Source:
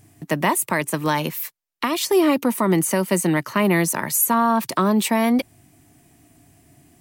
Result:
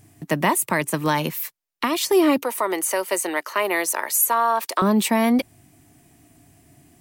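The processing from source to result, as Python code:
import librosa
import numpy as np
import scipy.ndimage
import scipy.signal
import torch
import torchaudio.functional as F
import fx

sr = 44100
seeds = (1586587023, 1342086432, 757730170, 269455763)

y = fx.highpass(x, sr, hz=410.0, slope=24, at=(2.42, 4.82))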